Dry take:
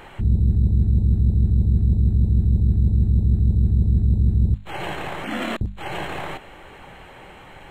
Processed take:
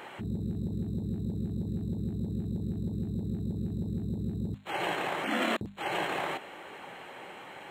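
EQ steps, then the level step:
high-pass filter 240 Hz 12 dB per octave
−1.5 dB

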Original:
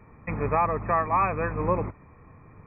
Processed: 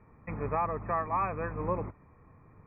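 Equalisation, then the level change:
low-pass filter 2,200 Hz 12 dB per octave
−6.5 dB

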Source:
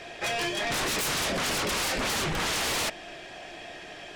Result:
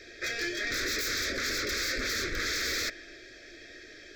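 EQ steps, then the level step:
dynamic equaliser 1,500 Hz, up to +6 dB, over −44 dBFS, Q 0.78
phaser with its sweep stopped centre 410 Hz, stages 4
phaser with its sweep stopped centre 2,900 Hz, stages 6
0.0 dB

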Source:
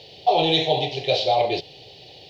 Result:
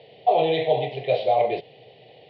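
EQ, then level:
loudspeaker in its box 110–3,200 Hz, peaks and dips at 130 Hz +8 dB, 220 Hz +8 dB, 470 Hz +9 dB, 660 Hz +9 dB, 1,100 Hz +5 dB, 2,000 Hz +9 dB
−7.5 dB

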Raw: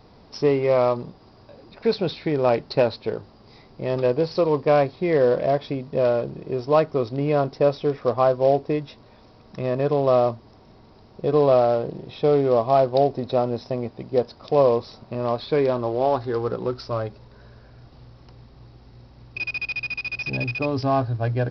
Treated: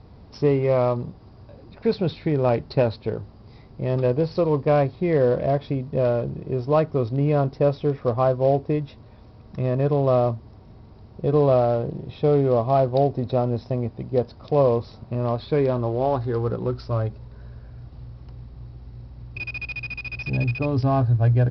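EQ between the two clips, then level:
high-frequency loss of the air 94 metres
parametric band 70 Hz +13 dB 2.6 octaves
−2.5 dB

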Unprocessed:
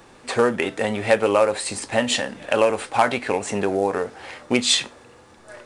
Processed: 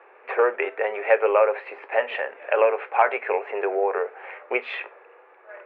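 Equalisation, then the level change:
Chebyshev band-pass filter 400–2,500 Hz, order 4
0.0 dB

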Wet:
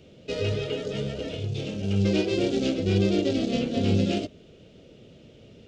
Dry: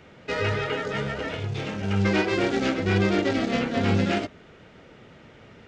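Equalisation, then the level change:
flat-topped bell 1,300 Hz −15.5 dB
0.0 dB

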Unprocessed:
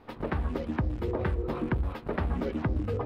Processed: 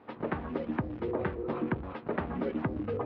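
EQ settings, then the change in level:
band-pass filter 150–3,300 Hz
high-frequency loss of the air 89 metres
0.0 dB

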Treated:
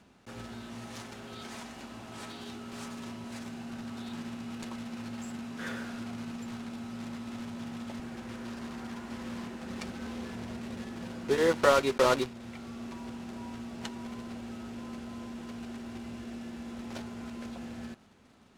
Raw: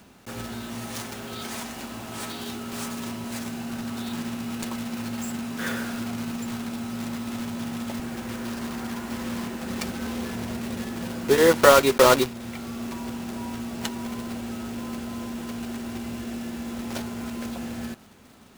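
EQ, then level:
high-frequency loss of the air 50 metres
−8.0 dB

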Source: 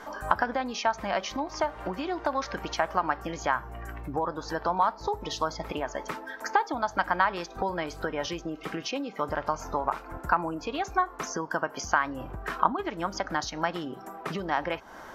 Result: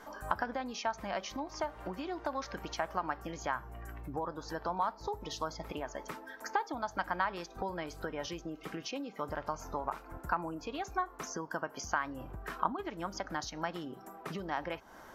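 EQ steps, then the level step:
low-shelf EQ 400 Hz +3.5 dB
high-shelf EQ 7,800 Hz +8.5 dB
−9.0 dB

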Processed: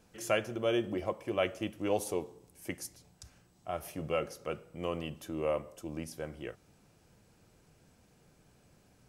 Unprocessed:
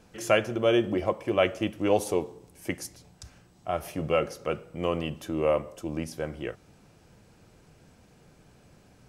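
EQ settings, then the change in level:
high-shelf EQ 7,400 Hz +7 dB
−7.5 dB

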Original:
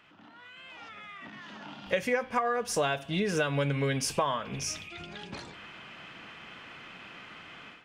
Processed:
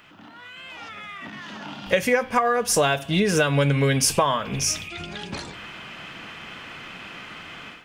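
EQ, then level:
low-shelf EQ 110 Hz +5.5 dB
high-shelf EQ 7,900 Hz +10 dB
mains-hum notches 60/120 Hz
+7.5 dB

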